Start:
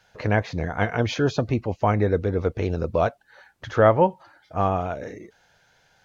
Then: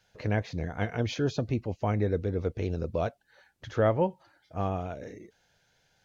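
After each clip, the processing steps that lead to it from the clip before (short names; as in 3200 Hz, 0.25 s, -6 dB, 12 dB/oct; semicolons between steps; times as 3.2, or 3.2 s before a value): bell 1100 Hz -7 dB 1.7 oct; gain -5 dB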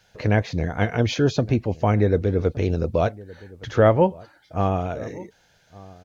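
outdoor echo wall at 200 m, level -21 dB; gain +8.5 dB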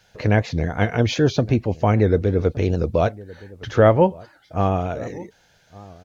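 record warp 78 rpm, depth 100 cents; gain +2 dB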